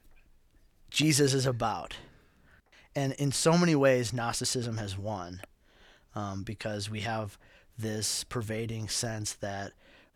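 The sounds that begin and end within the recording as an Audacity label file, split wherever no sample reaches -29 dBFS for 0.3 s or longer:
0.950000	1.910000	sound
2.960000	5.440000	sound
6.170000	7.230000	sound
7.830000	9.660000	sound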